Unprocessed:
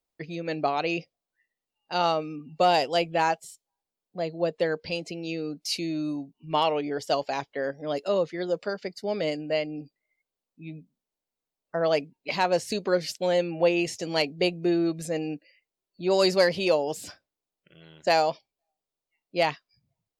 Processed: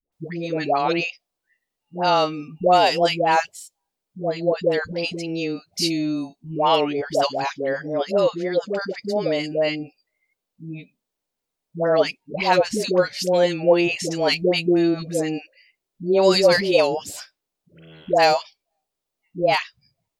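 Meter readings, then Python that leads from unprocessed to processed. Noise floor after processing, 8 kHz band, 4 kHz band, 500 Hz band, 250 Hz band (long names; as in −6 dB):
−83 dBFS, +6.0 dB, +6.0 dB, +6.0 dB, +6.0 dB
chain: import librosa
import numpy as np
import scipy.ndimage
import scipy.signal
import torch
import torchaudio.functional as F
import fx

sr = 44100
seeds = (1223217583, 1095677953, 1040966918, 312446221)

y = fx.dispersion(x, sr, late='highs', ms=124.0, hz=630.0)
y = y * librosa.db_to_amplitude(6.0)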